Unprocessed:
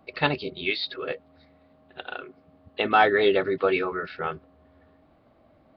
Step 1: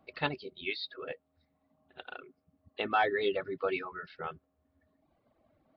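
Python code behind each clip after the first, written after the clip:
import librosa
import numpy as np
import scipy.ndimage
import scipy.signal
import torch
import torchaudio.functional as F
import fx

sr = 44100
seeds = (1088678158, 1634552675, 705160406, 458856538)

y = fx.dereverb_blind(x, sr, rt60_s=1.2)
y = y * librosa.db_to_amplitude(-8.5)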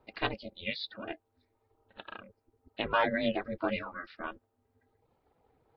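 y = x * np.sin(2.0 * np.pi * 170.0 * np.arange(len(x)) / sr)
y = y * librosa.db_to_amplitude(3.0)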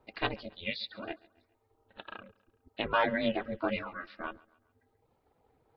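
y = fx.echo_feedback(x, sr, ms=138, feedback_pct=44, wet_db=-23.5)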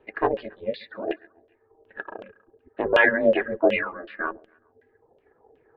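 y = fx.small_body(x, sr, hz=(400.0, 1700.0), ring_ms=20, db=14)
y = fx.filter_lfo_lowpass(y, sr, shape='saw_down', hz=2.7, low_hz=540.0, high_hz=3100.0, q=4.1)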